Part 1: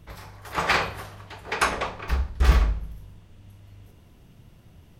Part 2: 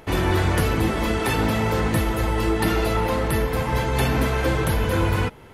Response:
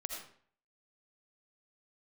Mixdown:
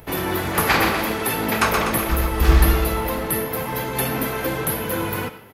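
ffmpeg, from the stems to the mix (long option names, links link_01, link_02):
-filter_complex "[0:a]volume=2.5dB,asplit=2[link_01][link_02];[link_02]volume=-4dB[link_03];[1:a]highpass=150,aexciter=amount=8.1:drive=3.8:freq=11000,volume=-4.5dB,asplit=2[link_04][link_05];[link_05]volume=-5dB[link_06];[2:a]atrim=start_sample=2205[link_07];[link_06][link_07]afir=irnorm=-1:irlink=0[link_08];[link_03]aecho=0:1:124|248|372|496|620|744|868|992:1|0.56|0.314|0.176|0.0983|0.0551|0.0308|0.0173[link_09];[link_01][link_04][link_08][link_09]amix=inputs=4:normalize=0"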